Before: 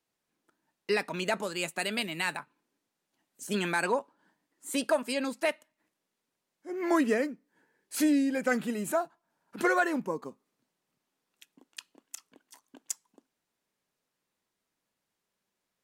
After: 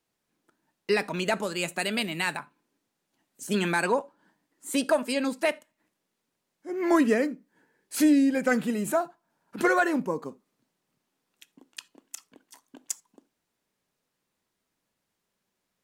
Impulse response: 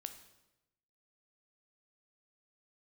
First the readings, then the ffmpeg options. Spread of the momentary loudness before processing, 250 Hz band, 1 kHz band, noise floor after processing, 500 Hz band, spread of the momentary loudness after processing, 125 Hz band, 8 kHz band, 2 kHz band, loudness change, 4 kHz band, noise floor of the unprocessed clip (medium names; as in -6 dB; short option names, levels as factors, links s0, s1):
21 LU, +5.0 dB, +3.0 dB, -82 dBFS, +3.5 dB, 22 LU, +5.5 dB, +2.5 dB, +2.5 dB, +3.5 dB, +2.5 dB, -85 dBFS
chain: -filter_complex "[0:a]asplit=2[s0][s1];[1:a]atrim=start_sample=2205,atrim=end_sample=3969,lowshelf=f=400:g=10[s2];[s1][s2]afir=irnorm=-1:irlink=0,volume=0.562[s3];[s0][s3]amix=inputs=2:normalize=0"